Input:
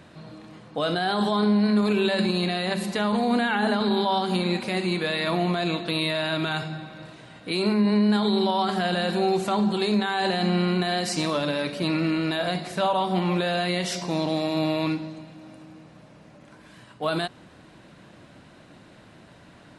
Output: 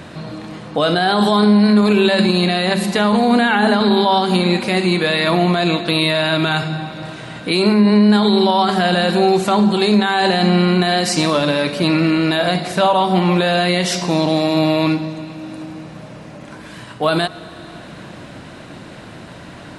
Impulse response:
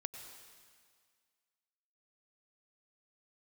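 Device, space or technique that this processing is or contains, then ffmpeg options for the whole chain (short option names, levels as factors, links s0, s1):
ducked reverb: -filter_complex "[0:a]asplit=3[s0][s1][s2];[1:a]atrim=start_sample=2205[s3];[s1][s3]afir=irnorm=-1:irlink=0[s4];[s2]apad=whole_len=872639[s5];[s4][s5]sidechaincompress=threshold=0.00891:ratio=3:attack=50:release=523,volume=1.58[s6];[s0][s6]amix=inputs=2:normalize=0,asettb=1/sr,asplit=3[s7][s8][s9];[s7]atrim=end=1.224[s10];[s8]atrim=start=1.22:end=1.73,asetpts=PTS-STARTPTS,afade=t=in:d=0.004:c=qsin,afade=t=out:st=0.506:d=0.004:c=qsin,highshelf=f=8800:g=9[s11];[s9]atrim=start=1.726[s12];[s10][s11]acrossfade=d=0.004:c1=hsin:c2=qsin[s13];[s13][s12]acrossfade=d=0.004:c1=qsin:c2=hsin,volume=2.37"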